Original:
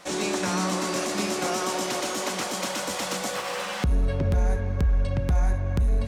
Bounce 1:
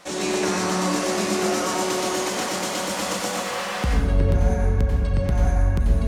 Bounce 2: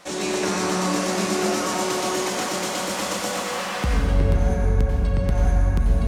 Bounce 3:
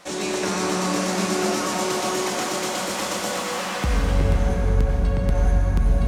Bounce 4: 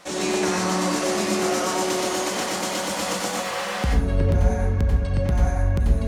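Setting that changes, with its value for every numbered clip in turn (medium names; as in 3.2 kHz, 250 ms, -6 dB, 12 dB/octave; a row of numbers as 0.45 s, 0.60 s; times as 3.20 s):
plate-style reverb, RT60: 1.1 s, 2.3 s, 4.7 s, 0.51 s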